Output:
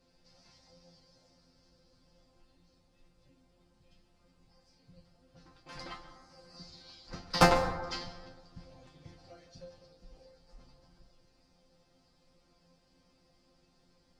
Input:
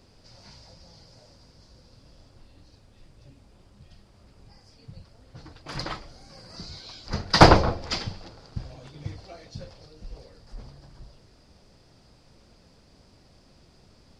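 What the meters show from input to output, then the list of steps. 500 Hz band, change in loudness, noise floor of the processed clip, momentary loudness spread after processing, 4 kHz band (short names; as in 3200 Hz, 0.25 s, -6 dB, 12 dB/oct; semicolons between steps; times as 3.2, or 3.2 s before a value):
-8.5 dB, -7.5 dB, -69 dBFS, 26 LU, -10.5 dB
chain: added harmonics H 3 -10 dB, 5 -19 dB, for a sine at -1.5 dBFS; resonator bank F3 fifth, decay 0.22 s; plate-style reverb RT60 1.3 s, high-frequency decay 0.3×, pre-delay 0.12 s, DRR 11 dB; gain +6.5 dB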